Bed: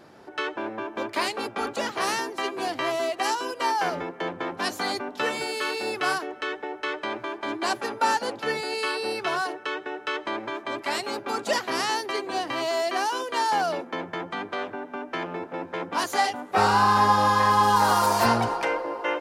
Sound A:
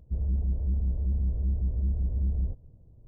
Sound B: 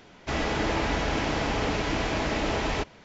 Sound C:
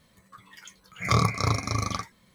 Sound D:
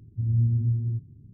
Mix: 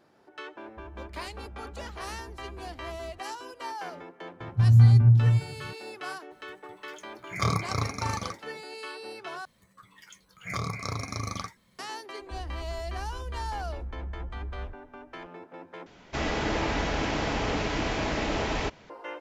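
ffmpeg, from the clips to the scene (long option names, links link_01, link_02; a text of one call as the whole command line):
ffmpeg -i bed.wav -i cue0.wav -i cue1.wav -i cue2.wav -i cue3.wav -filter_complex "[1:a]asplit=2[link_01][link_02];[3:a]asplit=2[link_03][link_04];[0:a]volume=-12dB[link_05];[link_01]highpass=57[link_06];[4:a]equalizer=frequency=140:width=1:gain=10.5[link_07];[link_04]acompressor=threshold=-23dB:ratio=6:attack=3.2:release=140:knee=1:detection=peak[link_08];[link_02]lowshelf=frequency=100:gain=9.5[link_09];[link_05]asplit=3[link_10][link_11][link_12];[link_10]atrim=end=9.454[link_13];[link_08]atrim=end=2.34,asetpts=PTS-STARTPTS,volume=-4dB[link_14];[link_11]atrim=start=11.786:end=15.864[link_15];[2:a]atrim=end=3.04,asetpts=PTS-STARTPTS,volume=-1.5dB[link_16];[link_12]atrim=start=18.896[link_17];[link_06]atrim=end=3.07,asetpts=PTS-STARTPTS,volume=-16dB,afade=type=in:duration=0.004:curve=hsin,afade=type=out:start_time=3.066:duration=0.004:curve=hsin,adelay=660[link_18];[link_07]atrim=end=1.33,asetpts=PTS-STARTPTS,volume=-2dB,afade=type=in:duration=0.004:curve=hsin,afade=type=out:start_time=1.326:duration=0.004:curve=hsin,adelay=4400[link_19];[link_03]atrim=end=2.34,asetpts=PTS-STARTPTS,volume=-4.5dB,afade=type=in:duration=0.004:curve=hsin,afade=type=out:start_time=2.336:duration=0.004:curve=hsin,adelay=6310[link_20];[link_09]atrim=end=3.07,asetpts=PTS-STARTPTS,volume=-16.5dB,afade=type=in:duration=0.004:curve=hsin,afade=type=out:start_time=3.066:duration=0.004:curve=hsin,adelay=538020S[link_21];[link_13][link_14]acrossfade=duration=0.004:curve1=hsin:curve2=hsin[link_22];[link_22][link_15]acrossfade=duration=0.004:curve1=hsin:curve2=hsin[link_23];[link_23][link_16]acrossfade=duration=0.004:curve1=hsin:curve2=hsin[link_24];[link_24][link_17]acrossfade=duration=0.004:curve1=hsin:curve2=hsin[link_25];[link_25][link_18][link_19][link_20][link_21]amix=inputs=5:normalize=0" out.wav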